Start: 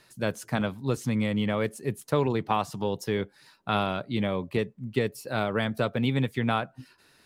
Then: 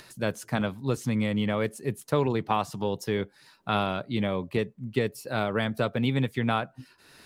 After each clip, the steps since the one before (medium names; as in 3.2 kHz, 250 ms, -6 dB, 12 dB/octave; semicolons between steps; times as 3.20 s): upward compressor, threshold -43 dBFS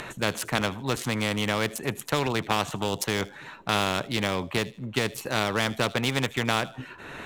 local Wiener filter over 9 samples; feedback echo behind a high-pass 78 ms, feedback 31%, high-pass 4.3 kHz, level -19 dB; spectrum-flattening compressor 2:1; trim +4.5 dB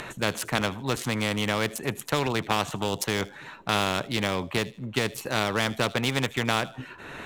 no audible change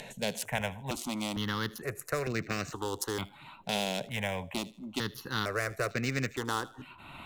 stepped phaser 2.2 Hz 330–3300 Hz; trim -3.5 dB